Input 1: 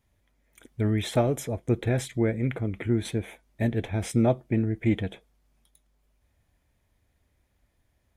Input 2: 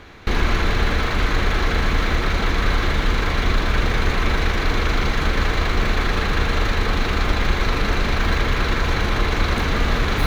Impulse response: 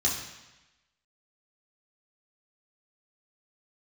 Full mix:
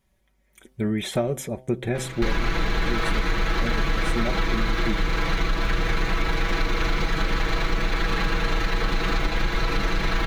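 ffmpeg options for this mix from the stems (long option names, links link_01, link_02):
-filter_complex "[0:a]aecho=1:1:5.3:0.61,volume=1.5dB[link_01];[1:a]aecho=1:1:6.1:0.98,adelay=1950,volume=1.5dB[link_02];[link_01][link_02]amix=inputs=2:normalize=0,bandreject=frequency=128.8:width_type=h:width=4,bandreject=frequency=257.6:width_type=h:width=4,bandreject=frequency=386.4:width_type=h:width=4,bandreject=frequency=515.2:width_type=h:width=4,bandreject=frequency=644:width_type=h:width=4,bandreject=frequency=772.8:width_type=h:width=4,bandreject=frequency=901.6:width_type=h:width=4,acompressor=threshold=-19dB:ratio=6"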